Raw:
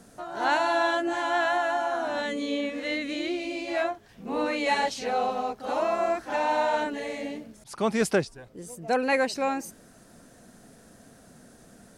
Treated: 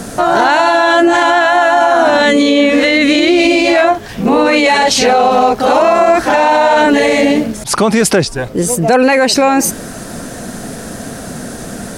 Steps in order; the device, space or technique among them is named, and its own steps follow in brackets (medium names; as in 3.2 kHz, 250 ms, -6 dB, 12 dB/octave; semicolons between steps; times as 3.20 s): loud club master (compression 2.5:1, threshold -28 dBFS, peak gain reduction 7.5 dB; hard clipper -20 dBFS, distortion -38 dB; loudness maximiser +28 dB); trim -1 dB